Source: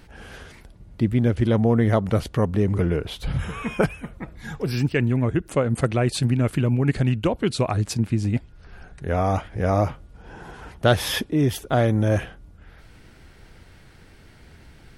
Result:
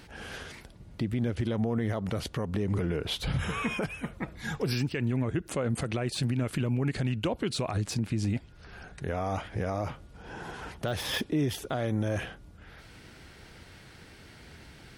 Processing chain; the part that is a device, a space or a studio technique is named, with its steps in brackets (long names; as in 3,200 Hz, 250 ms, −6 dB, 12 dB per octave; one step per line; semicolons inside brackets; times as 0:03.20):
broadcast voice chain (high-pass filter 85 Hz 6 dB per octave; de-essing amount 65%; downward compressor 3 to 1, threshold −23 dBFS, peak gain reduction 7.5 dB; parametric band 4,400 Hz +3.5 dB 2.1 octaves; brickwall limiter −20 dBFS, peak gain reduction 10 dB)